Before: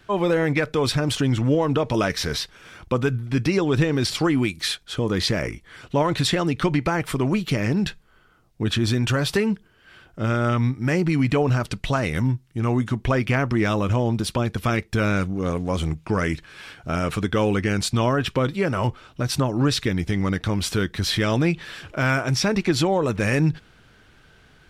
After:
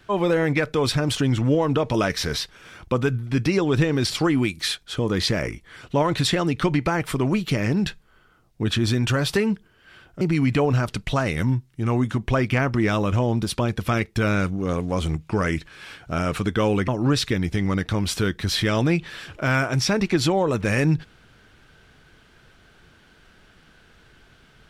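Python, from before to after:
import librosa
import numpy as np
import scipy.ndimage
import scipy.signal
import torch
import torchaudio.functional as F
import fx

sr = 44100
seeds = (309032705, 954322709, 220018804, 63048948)

y = fx.edit(x, sr, fx.cut(start_s=10.21, length_s=0.77),
    fx.cut(start_s=17.65, length_s=1.78), tone=tone)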